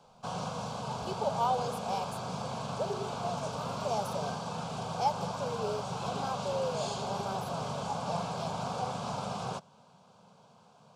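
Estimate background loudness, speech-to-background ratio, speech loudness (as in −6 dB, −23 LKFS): −37.0 LKFS, −0.5 dB, −37.5 LKFS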